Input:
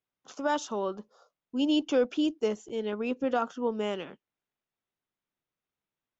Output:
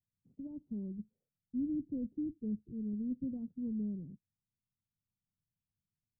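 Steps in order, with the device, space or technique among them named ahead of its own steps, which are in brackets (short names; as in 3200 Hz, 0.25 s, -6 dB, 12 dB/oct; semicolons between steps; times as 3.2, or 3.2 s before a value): the neighbour's flat through the wall (LPF 190 Hz 24 dB/oct; bell 98 Hz +6 dB 0.41 oct); gain +6 dB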